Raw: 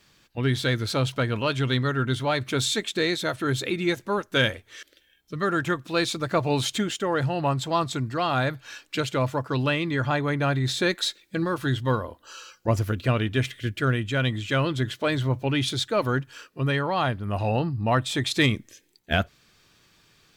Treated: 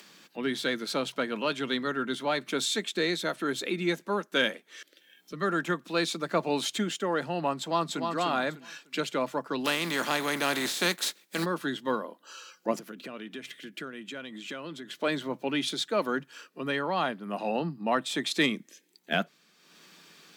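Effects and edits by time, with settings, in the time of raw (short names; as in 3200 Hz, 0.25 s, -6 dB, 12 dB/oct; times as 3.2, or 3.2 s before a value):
7.58–8.1 echo throw 0.3 s, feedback 25%, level -5 dB
9.64–11.44 spectral contrast lowered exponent 0.52
12.79–15.02 compressor 5:1, threshold -31 dBFS
whole clip: steep high-pass 160 Hz 72 dB/oct; upward compressor, threshold -41 dBFS; gain -3.5 dB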